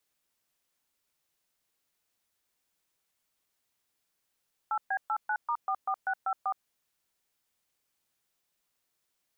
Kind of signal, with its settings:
touch tones "8B89*44654", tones 68 ms, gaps 126 ms, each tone −29.5 dBFS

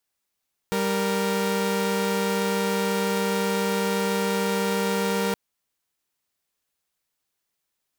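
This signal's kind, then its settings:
held notes G3/A#4 saw, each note −22.5 dBFS 4.62 s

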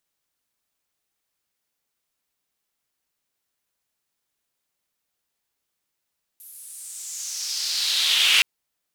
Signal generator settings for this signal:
filter sweep on noise white, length 2.02 s bandpass, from 12,000 Hz, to 2,700 Hz, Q 3.6, exponential, gain ramp +33 dB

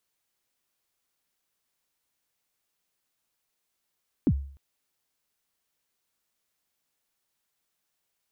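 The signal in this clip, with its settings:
synth kick length 0.30 s, from 340 Hz, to 69 Hz, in 59 ms, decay 0.51 s, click off, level −15.5 dB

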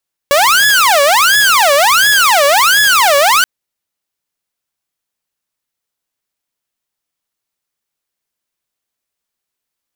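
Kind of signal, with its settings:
siren wail 561–1,700 Hz 1.4 per second saw −4.5 dBFS 3.13 s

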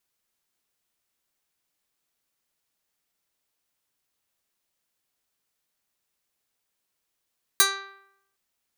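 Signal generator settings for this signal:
Karplus-Strong string G4, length 0.76 s, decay 0.78 s, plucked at 0.15, medium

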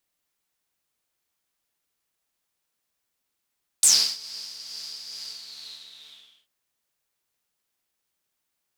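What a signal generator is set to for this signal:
subtractive patch with tremolo D3, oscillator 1 saw, oscillator 2 saw, interval +7 semitones, detune 23 cents, oscillator 2 level −2.5 dB, noise −1 dB, filter bandpass, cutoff 3,200 Hz, Q 10, filter envelope 1.5 octaves, filter decay 0.11 s, attack 1.1 ms, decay 0.34 s, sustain −22 dB, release 1.26 s, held 1.38 s, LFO 2.3 Hz, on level 3.5 dB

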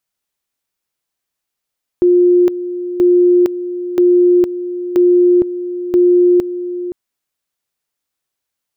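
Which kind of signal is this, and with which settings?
tone at two levels in turn 355 Hz −6.5 dBFS, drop 12.5 dB, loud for 0.46 s, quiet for 0.52 s, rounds 5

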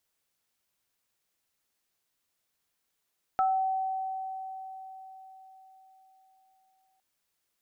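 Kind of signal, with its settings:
inharmonic partials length 3.61 s, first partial 762 Hz, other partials 1,310 Hz, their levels −4 dB, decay 4.52 s, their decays 0.33 s, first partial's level −22 dB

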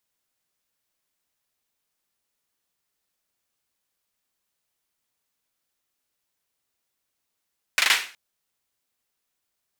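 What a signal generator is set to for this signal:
synth clap length 0.37 s, bursts 4, apart 40 ms, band 2,200 Hz, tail 0.39 s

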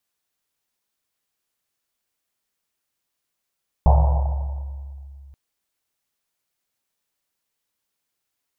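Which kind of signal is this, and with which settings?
drum after Risset length 1.48 s, pitch 69 Hz, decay 2.90 s, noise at 740 Hz, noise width 420 Hz, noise 20%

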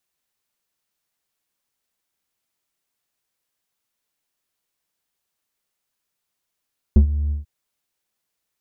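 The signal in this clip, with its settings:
subtractive voice square D2 12 dB per octave, low-pass 110 Hz, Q 1.3, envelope 1.5 octaves, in 0.07 s, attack 2.2 ms, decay 0.10 s, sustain −14 dB, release 0.14 s, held 0.35 s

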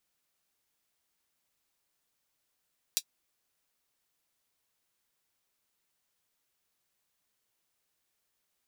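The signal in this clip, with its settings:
closed synth hi-hat, high-pass 4,000 Hz, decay 0.07 s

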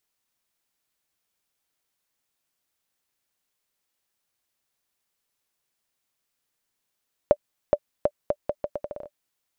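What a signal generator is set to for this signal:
bouncing ball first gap 0.42 s, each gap 0.77, 588 Hz, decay 55 ms −5 dBFS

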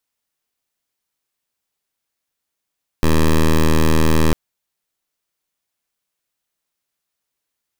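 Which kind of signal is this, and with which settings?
pulse wave 79.3 Hz, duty 11% −12.5 dBFS 1.30 s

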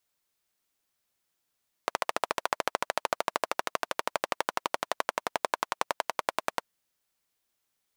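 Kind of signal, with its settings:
pulse-train model of a single-cylinder engine, changing speed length 4.79 s, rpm 1,700, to 1,200, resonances 660/950 Hz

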